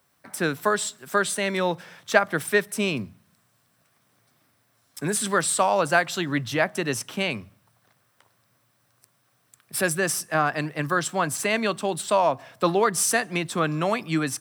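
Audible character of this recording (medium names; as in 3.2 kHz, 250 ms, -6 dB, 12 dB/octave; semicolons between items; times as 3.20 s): noise floor -67 dBFS; spectral tilt -3.5 dB/octave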